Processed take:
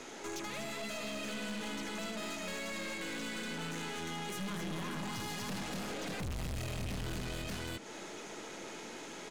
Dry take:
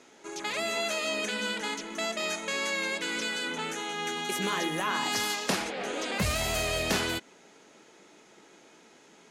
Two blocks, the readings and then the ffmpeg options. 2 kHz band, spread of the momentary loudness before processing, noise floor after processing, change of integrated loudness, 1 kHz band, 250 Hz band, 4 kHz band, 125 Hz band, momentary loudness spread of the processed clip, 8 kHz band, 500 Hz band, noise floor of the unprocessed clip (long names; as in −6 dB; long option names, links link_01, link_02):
−10.5 dB, 5 LU, −47 dBFS, −10.0 dB, −10.0 dB, −4.0 dB, −10.5 dB, −1.5 dB, 6 LU, −9.5 dB, −9.0 dB, −57 dBFS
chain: -filter_complex "[0:a]aecho=1:1:79|241|584:0.422|0.631|0.447,acrossover=split=190[link_01][link_02];[link_02]acompressor=threshold=-44dB:ratio=8[link_03];[link_01][link_03]amix=inputs=2:normalize=0,aeval=exprs='(tanh(224*val(0)+0.45)-tanh(0.45))/224':channel_layout=same,volume=10dB"